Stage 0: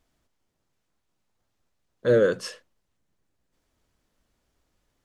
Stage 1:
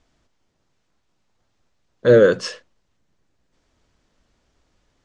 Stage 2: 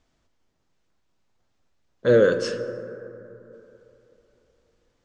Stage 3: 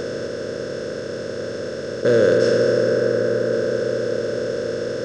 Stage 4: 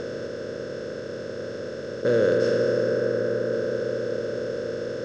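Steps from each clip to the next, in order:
low-pass 7.3 kHz 24 dB/octave; trim +7.5 dB
plate-style reverb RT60 3.2 s, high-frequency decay 0.3×, DRR 9 dB; trim -4.5 dB
spectral levelling over time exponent 0.2; trim -2.5 dB
distance through air 62 m; trim -5 dB

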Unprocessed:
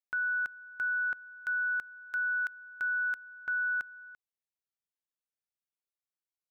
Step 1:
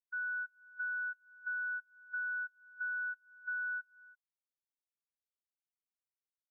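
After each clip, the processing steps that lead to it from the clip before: peaking EQ 1.7 kHz -5.5 dB 0.77 oct; compression 10:1, threshold -44 dBFS, peak gain reduction 10 dB; spectral contrast expander 2.5:1; trim -3.5 dB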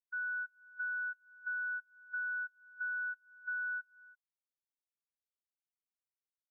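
no audible change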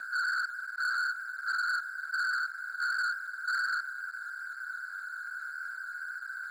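whistle 1.5 kHz -48 dBFS; whisper effect; waveshaping leveller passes 3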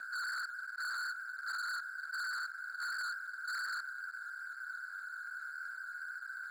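overload inside the chain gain 32.5 dB; trim -4.5 dB

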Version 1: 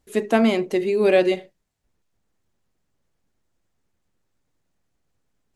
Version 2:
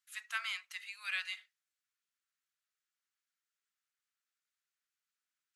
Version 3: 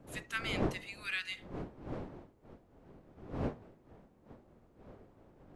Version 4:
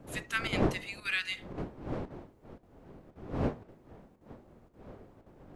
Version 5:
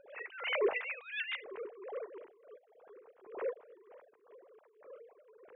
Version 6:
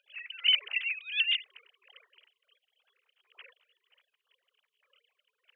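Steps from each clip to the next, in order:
elliptic high-pass 1.3 kHz, stop band 70 dB; trim -8 dB
wind noise 420 Hz -44 dBFS
square tremolo 1.9 Hz, depth 60%, duty 90%; trim +5 dB
formants replaced by sine waves; attacks held to a fixed rise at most 110 dB/s
resonant high-pass 3 kHz, resonance Q 8.8; trim +1 dB

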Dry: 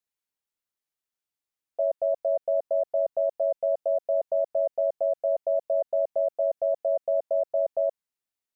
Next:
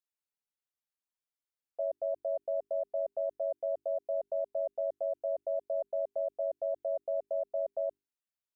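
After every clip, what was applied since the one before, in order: hum notches 50/100/150/200/250/300/350/400 Hz; trim -8 dB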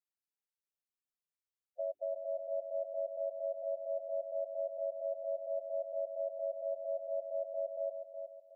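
harmonic-percussive separation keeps harmonic; feedback delay 367 ms, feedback 36%, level -7 dB; trim -4 dB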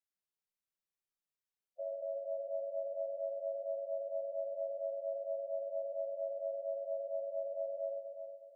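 simulated room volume 360 m³, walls mixed, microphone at 1.1 m; trim -5 dB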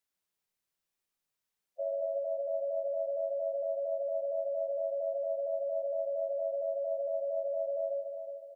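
delay 145 ms -7.5 dB; trim +6 dB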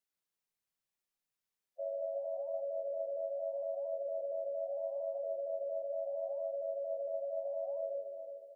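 flange 0.77 Hz, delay 4.2 ms, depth 9.6 ms, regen -90%

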